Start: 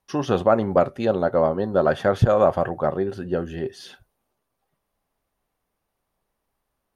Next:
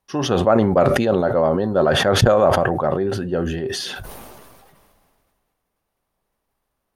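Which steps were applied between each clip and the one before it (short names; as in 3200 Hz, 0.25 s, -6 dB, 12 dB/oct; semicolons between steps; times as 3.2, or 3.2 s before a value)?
sustainer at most 27 dB/s; gain +1 dB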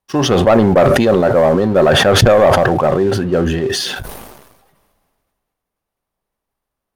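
sample leveller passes 2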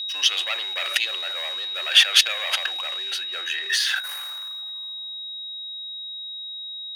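whine 3800 Hz -28 dBFS; high-pass sweep 2700 Hz -> 470 Hz, 3.01–6.57; steep high-pass 260 Hz 72 dB/oct; gain -4 dB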